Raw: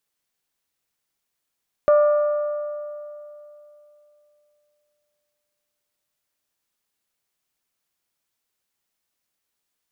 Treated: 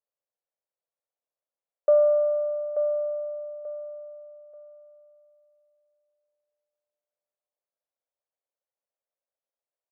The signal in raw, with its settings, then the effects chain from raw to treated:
metal hit bell, length 5.83 s, lowest mode 593 Hz, decay 3.07 s, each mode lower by 11.5 dB, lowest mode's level -11 dB
ladder band-pass 620 Hz, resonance 65%; on a send: feedback delay 885 ms, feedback 28%, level -8 dB

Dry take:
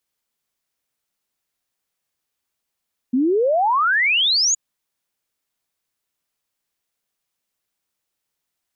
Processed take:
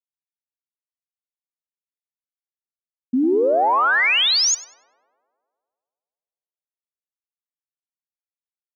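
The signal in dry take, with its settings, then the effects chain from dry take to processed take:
log sweep 240 Hz -> 7 kHz 1.42 s -14.5 dBFS
crossover distortion -58 dBFS; on a send: tape echo 99 ms, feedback 80%, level -7 dB, low-pass 1.9 kHz

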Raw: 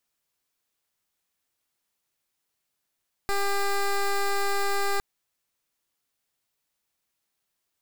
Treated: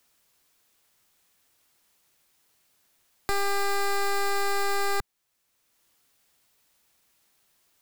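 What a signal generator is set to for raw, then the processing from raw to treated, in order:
pulse 399 Hz, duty 13% -24.5 dBFS 1.71 s
three bands compressed up and down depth 40%

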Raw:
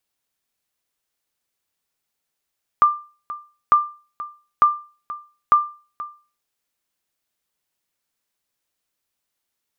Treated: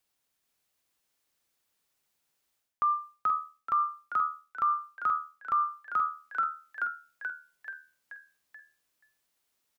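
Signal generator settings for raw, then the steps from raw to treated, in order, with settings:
sonar ping 1.19 kHz, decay 0.36 s, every 0.90 s, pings 4, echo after 0.48 s, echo -17 dB -6 dBFS
frequency-shifting echo 432 ms, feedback 55%, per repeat +77 Hz, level -5 dB; reverse; compression 10:1, threshold -25 dBFS; reverse

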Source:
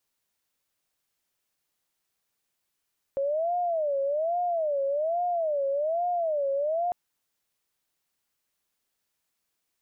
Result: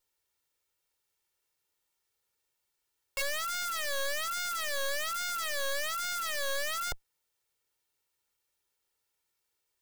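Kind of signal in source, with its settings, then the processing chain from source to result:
siren wail 548–712 Hz 1.2 per s sine -24 dBFS 3.75 s
comb filter that takes the minimum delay 2.2 ms; dynamic bell 170 Hz, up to +3 dB, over -58 dBFS, Q 3.2; integer overflow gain 28 dB

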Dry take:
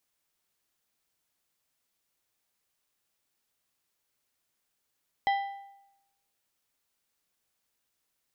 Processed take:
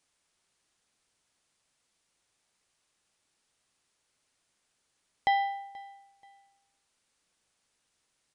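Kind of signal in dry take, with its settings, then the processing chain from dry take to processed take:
metal hit plate, lowest mode 794 Hz, decay 0.89 s, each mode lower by 7.5 dB, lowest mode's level -21.5 dB
in parallel at -1 dB: peak limiter -28.5 dBFS; on the sum: feedback delay 481 ms, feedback 32%, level -22.5 dB; resampled via 22.05 kHz

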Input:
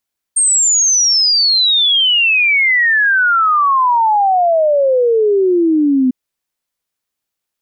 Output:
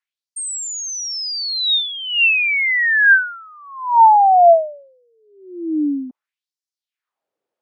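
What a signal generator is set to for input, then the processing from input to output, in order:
log sweep 8.7 kHz -> 250 Hz 5.75 s -9 dBFS
tilt EQ -5.5 dB/octave; peak limiter -11.5 dBFS; LFO high-pass sine 0.64 Hz 440–5600 Hz

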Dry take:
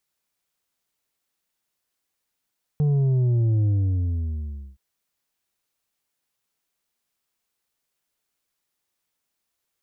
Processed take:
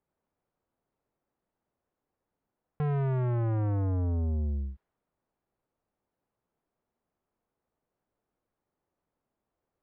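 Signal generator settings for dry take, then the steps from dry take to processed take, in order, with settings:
sub drop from 150 Hz, over 1.97 s, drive 5.5 dB, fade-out 1.11 s, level -18 dB
level-controlled noise filter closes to 790 Hz, open at -24.5 dBFS; in parallel at +2 dB: compression, threshold -31 dBFS; on the sum: saturation -27 dBFS

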